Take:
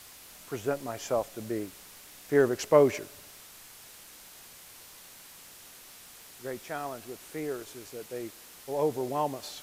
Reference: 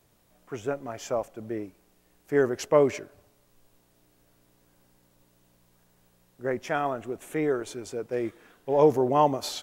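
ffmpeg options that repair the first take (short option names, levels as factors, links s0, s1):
-af "afwtdn=0.0035,asetnsamples=n=441:p=0,asendcmd='3.4 volume volume 8.5dB',volume=1"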